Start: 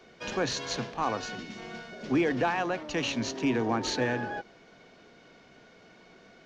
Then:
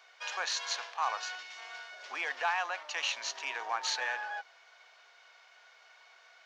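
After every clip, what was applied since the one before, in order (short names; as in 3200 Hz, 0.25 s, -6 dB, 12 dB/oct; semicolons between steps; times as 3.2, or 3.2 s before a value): HPF 810 Hz 24 dB/oct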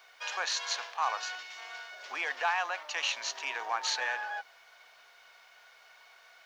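requantised 12-bit, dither none; gain +1.5 dB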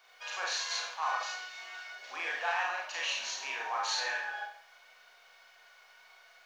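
Schroeder reverb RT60 0.54 s, combs from 30 ms, DRR -3 dB; gain -6 dB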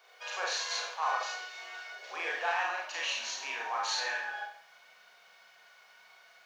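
high-pass sweep 420 Hz -> 150 Hz, 2.22–3.28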